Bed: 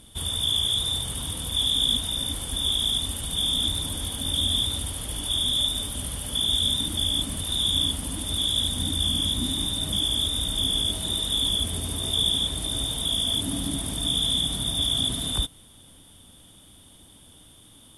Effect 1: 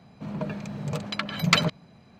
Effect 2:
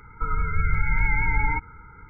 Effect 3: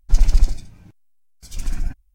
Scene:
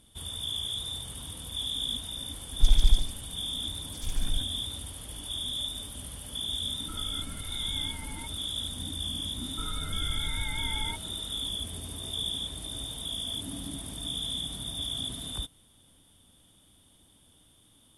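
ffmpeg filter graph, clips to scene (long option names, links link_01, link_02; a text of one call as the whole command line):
ffmpeg -i bed.wav -i cue0.wav -i cue1.wav -i cue2.wav -filter_complex "[2:a]asplit=2[link_01][link_02];[0:a]volume=-9.5dB[link_03];[link_01]acompressor=threshold=-23dB:ratio=6:attack=3.2:release=140:knee=1:detection=peak[link_04];[3:a]atrim=end=2.14,asetpts=PTS-STARTPTS,volume=-6.5dB,afade=type=in:duration=0.004:curve=hsin,afade=type=out:start_time=2.136:duration=0.004:curve=hsin,adelay=2500[link_05];[link_04]atrim=end=2.09,asetpts=PTS-STARTPTS,volume=-14.5dB,afade=type=in:duration=0.004:curve=hsin,afade=type=out:start_time=2.086:duration=0.004:curve=hsin,adelay=6680[link_06];[link_02]atrim=end=2.09,asetpts=PTS-STARTPTS,volume=-12.5dB,afade=type=in:duration=0.004:curve=hsin,afade=type=out:start_time=2.086:duration=0.004:curve=hsin,adelay=9370[link_07];[link_03][link_05][link_06][link_07]amix=inputs=4:normalize=0" out.wav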